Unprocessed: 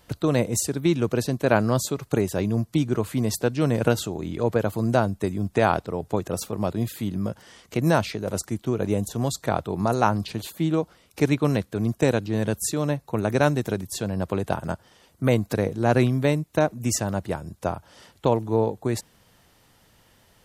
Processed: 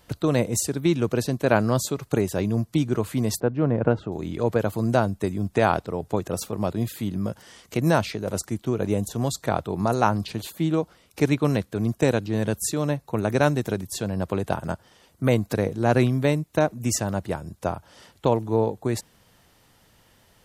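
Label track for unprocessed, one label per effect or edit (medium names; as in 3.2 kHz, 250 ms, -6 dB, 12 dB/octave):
3.400000	4.120000	low-pass 1.4 kHz
7.280000	7.800000	treble shelf 6 kHz +4.5 dB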